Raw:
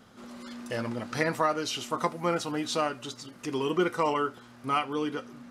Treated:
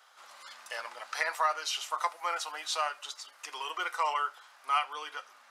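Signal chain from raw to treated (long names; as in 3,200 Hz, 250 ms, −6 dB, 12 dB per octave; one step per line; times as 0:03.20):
high-pass filter 760 Hz 24 dB per octave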